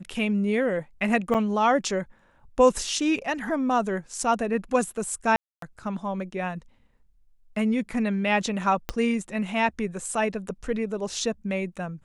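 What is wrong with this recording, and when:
0:01.34–0:01.35: drop-out 6.8 ms
0:05.36–0:05.62: drop-out 263 ms
0:08.89: click −13 dBFS

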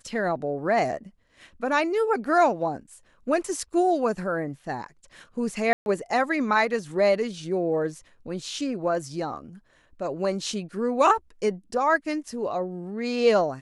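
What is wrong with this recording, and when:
0:05.73–0:05.86: drop-out 131 ms

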